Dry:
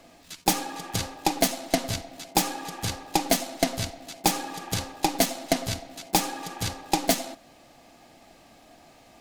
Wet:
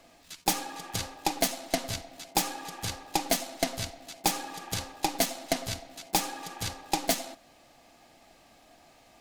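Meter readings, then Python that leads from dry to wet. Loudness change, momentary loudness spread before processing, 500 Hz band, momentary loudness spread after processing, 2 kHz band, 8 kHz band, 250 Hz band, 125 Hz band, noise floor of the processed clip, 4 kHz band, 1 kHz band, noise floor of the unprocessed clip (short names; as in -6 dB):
-4.0 dB, 8 LU, -4.5 dB, 8 LU, -3.0 dB, -3.0 dB, -6.5 dB, -6.0 dB, -59 dBFS, -3.0 dB, -4.0 dB, -54 dBFS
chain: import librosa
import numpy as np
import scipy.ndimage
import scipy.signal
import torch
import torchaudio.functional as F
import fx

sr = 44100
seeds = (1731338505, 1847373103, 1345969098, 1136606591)

y = fx.peak_eq(x, sr, hz=200.0, db=-4.0, octaves=2.8)
y = F.gain(torch.from_numpy(y), -3.0).numpy()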